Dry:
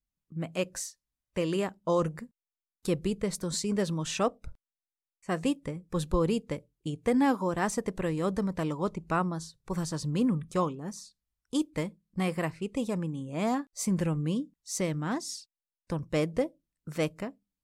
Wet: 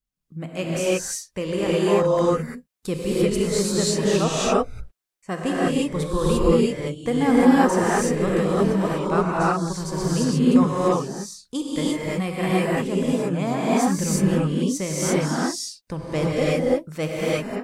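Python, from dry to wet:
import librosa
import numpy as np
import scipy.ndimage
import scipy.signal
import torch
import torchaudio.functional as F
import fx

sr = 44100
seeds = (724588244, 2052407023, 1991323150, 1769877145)

y = fx.rev_gated(x, sr, seeds[0], gate_ms=370, shape='rising', drr_db=-7.5)
y = y * 10.0 ** (1.5 / 20.0)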